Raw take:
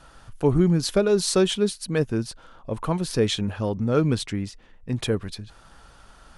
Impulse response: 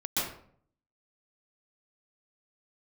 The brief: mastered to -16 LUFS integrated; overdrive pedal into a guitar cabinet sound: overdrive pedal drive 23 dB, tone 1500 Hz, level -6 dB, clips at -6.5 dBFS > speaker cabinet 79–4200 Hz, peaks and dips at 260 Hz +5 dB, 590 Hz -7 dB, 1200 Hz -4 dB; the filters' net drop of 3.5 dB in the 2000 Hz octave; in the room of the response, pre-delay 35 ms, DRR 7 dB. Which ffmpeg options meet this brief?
-filter_complex "[0:a]equalizer=f=2k:t=o:g=-4,asplit=2[a][b];[1:a]atrim=start_sample=2205,adelay=35[c];[b][c]afir=irnorm=-1:irlink=0,volume=-15dB[d];[a][d]amix=inputs=2:normalize=0,asplit=2[e][f];[f]highpass=f=720:p=1,volume=23dB,asoftclip=type=tanh:threshold=-6.5dB[g];[e][g]amix=inputs=2:normalize=0,lowpass=f=1.5k:p=1,volume=-6dB,highpass=79,equalizer=f=260:t=q:w=4:g=5,equalizer=f=590:t=q:w=4:g=-7,equalizer=f=1.2k:t=q:w=4:g=-4,lowpass=f=4.2k:w=0.5412,lowpass=f=4.2k:w=1.3066,volume=3dB"

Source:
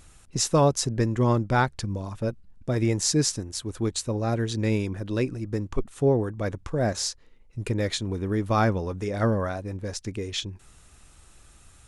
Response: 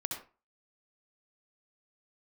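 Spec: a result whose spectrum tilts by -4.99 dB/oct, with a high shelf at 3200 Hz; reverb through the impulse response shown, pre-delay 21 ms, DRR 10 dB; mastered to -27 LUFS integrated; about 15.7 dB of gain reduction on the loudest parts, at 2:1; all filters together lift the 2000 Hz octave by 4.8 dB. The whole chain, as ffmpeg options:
-filter_complex "[0:a]equalizer=f=2k:t=o:g=8,highshelf=f=3.2k:g=-4,acompressor=threshold=-46dB:ratio=2,asplit=2[a][b];[1:a]atrim=start_sample=2205,adelay=21[c];[b][c]afir=irnorm=-1:irlink=0,volume=-12dB[d];[a][d]amix=inputs=2:normalize=0,volume=12.5dB"

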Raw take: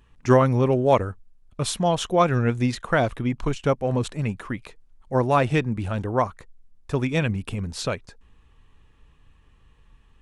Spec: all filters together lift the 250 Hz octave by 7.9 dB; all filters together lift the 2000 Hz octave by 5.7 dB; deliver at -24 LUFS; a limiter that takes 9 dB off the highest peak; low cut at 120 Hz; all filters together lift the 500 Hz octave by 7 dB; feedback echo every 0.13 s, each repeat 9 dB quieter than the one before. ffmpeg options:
-af "highpass=120,equalizer=f=250:t=o:g=8,equalizer=f=500:t=o:g=6,equalizer=f=2k:t=o:g=7,alimiter=limit=-6.5dB:level=0:latency=1,aecho=1:1:130|260|390|520:0.355|0.124|0.0435|0.0152,volume=-4.5dB"

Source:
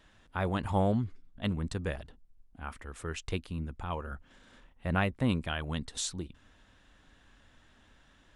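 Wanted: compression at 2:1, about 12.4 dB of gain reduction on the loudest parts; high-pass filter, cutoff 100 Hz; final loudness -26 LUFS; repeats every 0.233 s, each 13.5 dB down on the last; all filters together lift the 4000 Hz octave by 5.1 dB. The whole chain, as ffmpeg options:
-af "highpass=100,equalizer=f=4k:t=o:g=6.5,acompressor=threshold=-46dB:ratio=2,aecho=1:1:233|466:0.211|0.0444,volume=18dB"

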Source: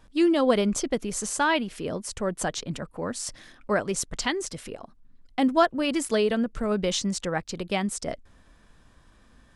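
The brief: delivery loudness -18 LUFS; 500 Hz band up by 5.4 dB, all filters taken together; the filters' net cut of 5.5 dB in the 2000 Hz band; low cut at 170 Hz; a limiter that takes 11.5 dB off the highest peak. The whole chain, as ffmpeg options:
-af "highpass=170,equalizer=f=500:t=o:g=7.5,equalizer=f=2k:t=o:g=-8,volume=8.5dB,alimiter=limit=-7dB:level=0:latency=1"

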